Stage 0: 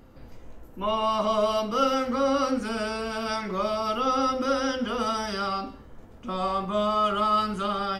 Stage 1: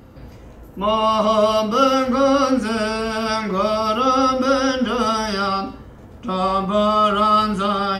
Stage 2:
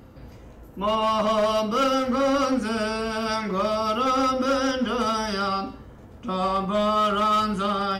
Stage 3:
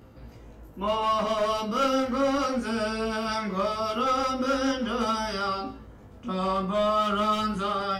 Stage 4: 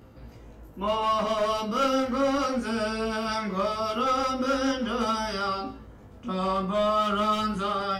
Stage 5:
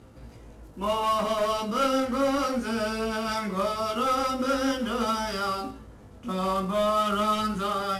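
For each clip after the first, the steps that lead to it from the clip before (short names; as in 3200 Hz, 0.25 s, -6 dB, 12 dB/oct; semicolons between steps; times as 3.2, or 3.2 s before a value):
HPF 75 Hz 12 dB/oct; low shelf 100 Hz +9.5 dB; gain +7.5 dB
reverse; upward compressor, threshold -37 dBFS; reverse; hard clip -12.5 dBFS, distortion -16 dB; gain -4.5 dB
chorus 0.38 Hz, delay 17 ms, depth 4.2 ms
nothing audible
CVSD 64 kbps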